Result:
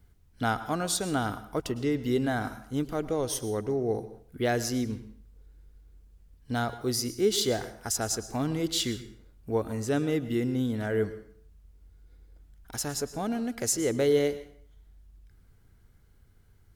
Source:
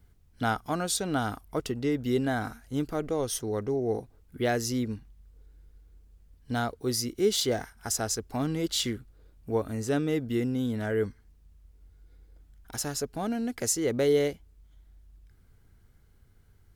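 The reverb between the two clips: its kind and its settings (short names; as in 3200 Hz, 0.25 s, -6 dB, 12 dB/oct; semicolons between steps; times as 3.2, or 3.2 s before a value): plate-style reverb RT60 0.57 s, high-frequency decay 0.85×, pre-delay 95 ms, DRR 13.5 dB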